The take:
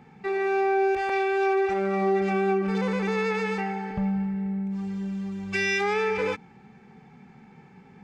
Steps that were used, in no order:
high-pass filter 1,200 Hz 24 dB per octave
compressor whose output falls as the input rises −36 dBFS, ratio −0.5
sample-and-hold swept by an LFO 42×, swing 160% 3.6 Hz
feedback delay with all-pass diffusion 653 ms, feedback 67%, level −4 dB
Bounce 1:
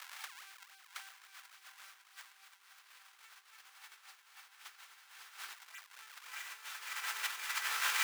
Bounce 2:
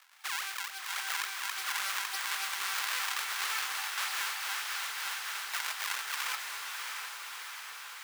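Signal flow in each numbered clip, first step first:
sample-and-hold swept by an LFO, then feedback delay with all-pass diffusion, then compressor whose output falls as the input rises, then high-pass filter
sample-and-hold swept by an LFO, then high-pass filter, then compressor whose output falls as the input rises, then feedback delay with all-pass diffusion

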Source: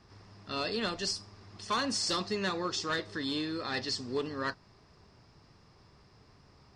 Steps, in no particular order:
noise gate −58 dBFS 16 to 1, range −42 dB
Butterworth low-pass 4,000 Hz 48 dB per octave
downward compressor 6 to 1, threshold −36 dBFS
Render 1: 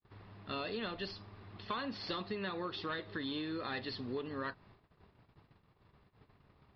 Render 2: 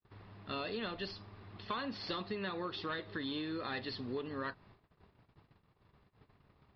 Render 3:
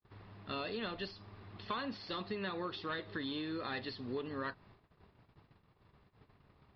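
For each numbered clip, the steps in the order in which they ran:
noise gate, then Butterworth low-pass, then downward compressor
Butterworth low-pass, then noise gate, then downward compressor
noise gate, then downward compressor, then Butterworth low-pass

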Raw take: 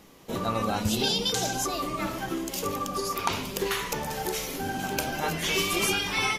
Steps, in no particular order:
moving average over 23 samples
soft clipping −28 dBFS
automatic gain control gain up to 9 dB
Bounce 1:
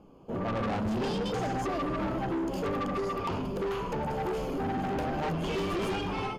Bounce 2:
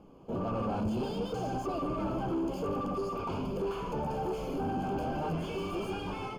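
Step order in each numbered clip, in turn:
automatic gain control, then moving average, then soft clipping
automatic gain control, then soft clipping, then moving average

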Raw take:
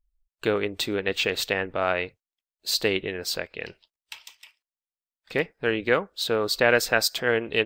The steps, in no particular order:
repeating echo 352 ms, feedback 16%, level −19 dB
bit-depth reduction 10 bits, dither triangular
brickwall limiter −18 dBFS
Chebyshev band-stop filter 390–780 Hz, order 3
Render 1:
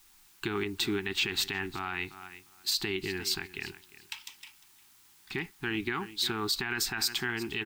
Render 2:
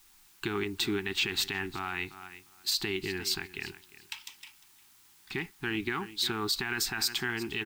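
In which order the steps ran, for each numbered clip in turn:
repeating echo, then bit-depth reduction, then brickwall limiter, then Chebyshev band-stop filter
repeating echo, then brickwall limiter, then bit-depth reduction, then Chebyshev band-stop filter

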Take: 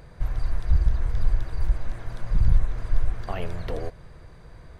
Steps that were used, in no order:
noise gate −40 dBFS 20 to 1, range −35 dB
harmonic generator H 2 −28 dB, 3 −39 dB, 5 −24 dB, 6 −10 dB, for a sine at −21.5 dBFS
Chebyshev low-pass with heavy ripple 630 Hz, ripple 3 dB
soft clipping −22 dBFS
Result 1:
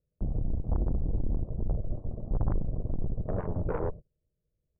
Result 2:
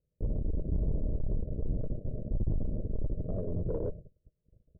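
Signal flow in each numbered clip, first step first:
Chebyshev low-pass with heavy ripple, then noise gate, then soft clipping, then harmonic generator
noise gate, then harmonic generator, then Chebyshev low-pass with heavy ripple, then soft clipping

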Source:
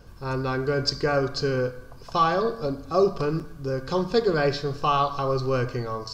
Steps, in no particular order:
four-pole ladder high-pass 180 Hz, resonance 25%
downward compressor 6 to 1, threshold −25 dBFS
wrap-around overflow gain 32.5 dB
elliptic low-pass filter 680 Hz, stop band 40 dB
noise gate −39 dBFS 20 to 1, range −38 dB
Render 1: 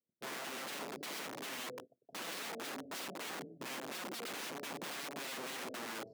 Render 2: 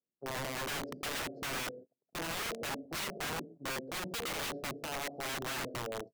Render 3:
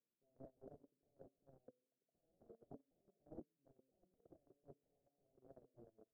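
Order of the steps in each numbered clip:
noise gate, then elliptic low-pass filter, then downward compressor, then wrap-around overflow, then four-pole ladder high-pass
elliptic low-pass filter, then noise gate, then four-pole ladder high-pass, then downward compressor, then wrap-around overflow
downward compressor, then four-pole ladder high-pass, then wrap-around overflow, then elliptic low-pass filter, then noise gate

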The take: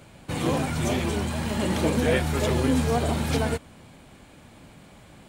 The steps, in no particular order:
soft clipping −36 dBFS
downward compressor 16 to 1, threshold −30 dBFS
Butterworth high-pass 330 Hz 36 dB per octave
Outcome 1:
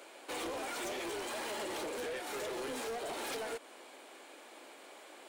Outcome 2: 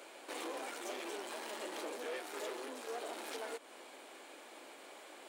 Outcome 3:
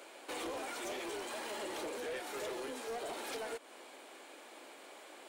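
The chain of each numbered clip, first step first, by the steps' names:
Butterworth high-pass, then downward compressor, then soft clipping
downward compressor, then soft clipping, then Butterworth high-pass
downward compressor, then Butterworth high-pass, then soft clipping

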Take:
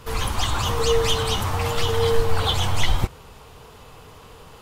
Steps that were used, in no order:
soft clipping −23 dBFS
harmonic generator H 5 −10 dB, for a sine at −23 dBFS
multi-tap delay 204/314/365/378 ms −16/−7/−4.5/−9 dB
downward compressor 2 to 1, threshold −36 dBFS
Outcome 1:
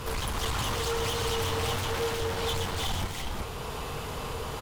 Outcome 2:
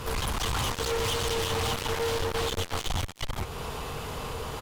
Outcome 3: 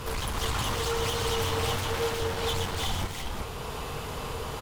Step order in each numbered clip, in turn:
downward compressor, then harmonic generator, then multi-tap delay, then soft clipping
multi-tap delay, then soft clipping, then downward compressor, then harmonic generator
downward compressor, then harmonic generator, then soft clipping, then multi-tap delay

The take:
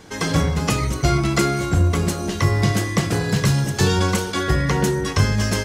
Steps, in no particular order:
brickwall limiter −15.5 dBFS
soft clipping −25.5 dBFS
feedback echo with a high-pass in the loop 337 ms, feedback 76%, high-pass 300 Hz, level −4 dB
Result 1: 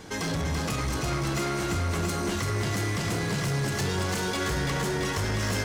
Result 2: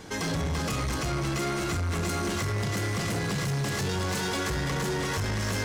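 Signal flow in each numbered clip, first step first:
brickwall limiter, then soft clipping, then feedback echo with a high-pass in the loop
feedback echo with a high-pass in the loop, then brickwall limiter, then soft clipping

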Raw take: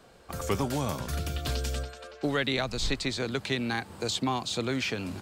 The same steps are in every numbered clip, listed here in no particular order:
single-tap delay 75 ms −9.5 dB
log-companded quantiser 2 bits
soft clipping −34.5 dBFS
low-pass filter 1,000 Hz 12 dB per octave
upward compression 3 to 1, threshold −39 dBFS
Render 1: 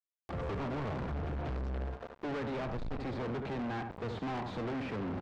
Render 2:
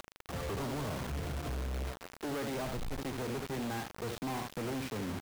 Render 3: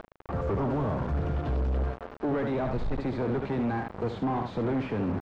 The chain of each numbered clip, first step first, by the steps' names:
log-companded quantiser, then low-pass filter, then upward compression, then single-tap delay, then soft clipping
low-pass filter, then upward compression, then single-tap delay, then log-companded quantiser, then soft clipping
single-tap delay, then soft clipping, then upward compression, then log-companded quantiser, then low-pass filter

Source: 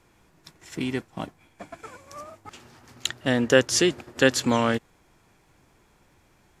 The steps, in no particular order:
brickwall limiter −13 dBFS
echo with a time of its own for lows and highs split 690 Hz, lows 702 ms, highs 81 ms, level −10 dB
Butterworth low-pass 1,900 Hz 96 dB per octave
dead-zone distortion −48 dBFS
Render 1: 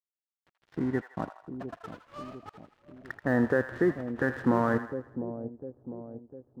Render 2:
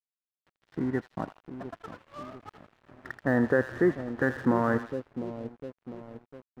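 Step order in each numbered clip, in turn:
brickwall limiter, then Butterworth low-pass, then dead-zone distortion, then echo with a time of its own for lows and highs
Butterworth low-pass, then brickwall limiter, then echo with a time of its own for lows and highs, then dead-zone distortion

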